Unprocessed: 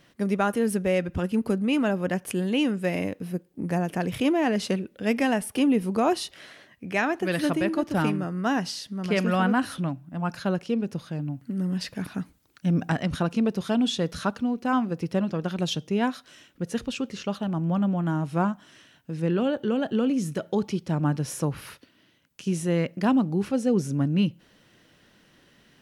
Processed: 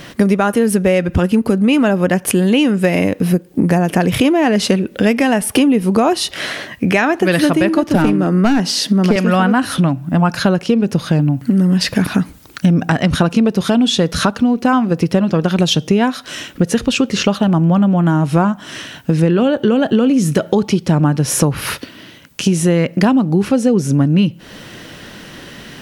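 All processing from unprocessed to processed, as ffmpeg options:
ffmpeg -i in.wav -filter_complex "[0:a]asettb=1/sr,asplit=3[link_01][link_02][link_03];[link_01]atrim=end=7.954[link_04];[link_02]atrim=start=7.95:end=9.16,asetpts=PTS-STARTPTS,afade=type=in:duration=0.004:curve=qsin,afade=type=out:start_time=1.206:duration=0.004:curve=qsin,highpass=frequency=210:width=0.5412,highpass=frequency=210:width=1.3066,aeval=exprs='clip(val(0),-1,0.0596)':channel_layout=same,lowshelf=frequency=350:gain=11[link_05];[link_03]atrim=start=9.156[link_06];[link_04][link_05]acrossfade=duration=0.004:curve1=hsin:curve2=qsin[link_07];[link_07][link_06]acrossfade=duration=0.004:curve1=qsin:curve2=hsin,acompressor=threshold=-35dB:ratio=6,alimiter=level_in=25dB:limit=-1dB:release=50:level=0:latency=1,volume=-1dB" out.wav

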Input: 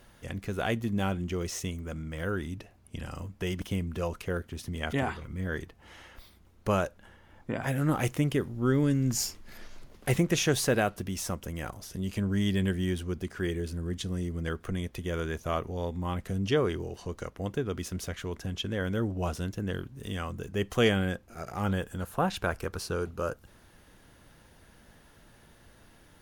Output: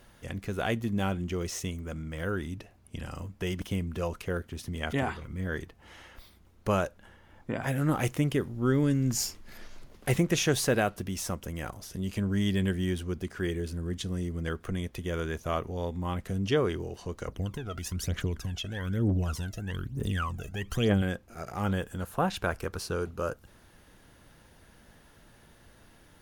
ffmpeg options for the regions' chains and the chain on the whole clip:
ffmpeg -i in.wav -filter_complex "[0:a]asettb=1/sr,asplit=3[link_01][link_02][link_03];[link_01]atrim=end=17.284[link_04];[link_02]atrim=start=17.28:end=21.02,asetpts=PTS-STARTPTS,afade=type=in:duration=0.004:curve=qsin,afade=type=out:start_time=3.736:duration=0.004:curve=qsin,acompressor=threshold=-34dB:ratio=2:attack=3.2:release=140:knee=1:detection=peak,aphaser=in_gain=1:out_gain=1:delay=1.6:decay=0.74:speed=1.1:type=triangular[link_05];[link_03]atrim=start=21.016[link_06];[link_04][link_05]acrossfade=duration=0.004:curve1=hsin:curve2=qsin[link_07];[link_07][link_06]acrossfade=duration=0.004:curve1=qsin:curve2=hsin" out.wav

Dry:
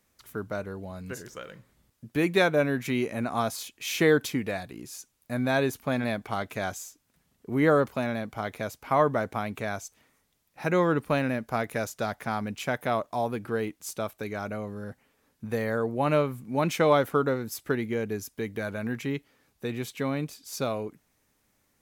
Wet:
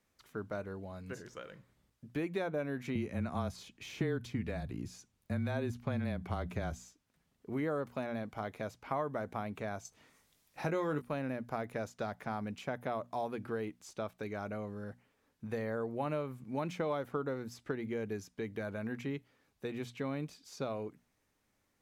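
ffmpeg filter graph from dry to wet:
ffmpeg -i in.wav -filter_complex "[0:a]asettb=1/sr,asplit=3[link_01][link_02][link_03];[link_01]atrim=end=2.954[link_04];[link_02]atrim=start=2.95:end=6.82,asetpts=PTS-STARTPTS,afade=type=in:duration=0.004:curve=qsin,afade=type=out:start_time=3.866:duration=0.004:curve=qsin,equalizer=frequency=120:width=0.51:gain=12.5,afreqshift=-21[link_05];[link_03]atrim=start=6.816[link_06];[link_04][link_05]acrossfade=duration=0.004:curve1=hsin:curve2=qsin[link_07];[link_07][link_06]acrossfade=duration=0.004:curve1=qsin:curve2=hsin,asettb=1/sr,asplit=3[link_08][link_09][link_10];[link_08]atrim=end=9.854[link_11];[link_09]atrim=start=9.85:end=11.02,asetpts=PTS-STARTPTS,afade=type=in:duration=0.004:curve=qsin,afade=type=out:start_time=1.166:duration=0.004:curve=qsin,highshelf=frequency=4100:gain=8.5,acontrast=36,asplit=2[link_12][link_13];[link_13]adelay=20,volume=-8.5dB[link_14];[link_12][link_14]amix=inputs=2:normalize=0,atrim=end_sample=51597[link_15];[link_10]atrim=start=11.016[link_16];[link_11][link_15]acrossfade=duration=0.004:curve1=hsin:curve2=qsin[link_17];[link_17][link_16]acrossfade=duration=0.004:curve1=qsin:curve2=hsin,bandreject=frequency=60:width_type=h:width=6,bandreject=frequency=120:width_type=h:width=6,bandreject=frequency=180:width_type=h:width=6,bandreject=frequency=240:width_type=h:width=6,acrossover=split=1200|7800[link_18][link_19][link_20];[link_18]acompressor=threshold=-28dB:ratio=4[link_21];[link_19]acompressor=threshold=-42dB:ratio=4[link_22];[link_20]acompressor=threshold=-58dB:ratio=4[link_23];[link_21][link_22][link_23]amix=inputs=3:normalize=0,highshelf=frequency=8200:gain=-9,volume=-5.5dB" out.wav

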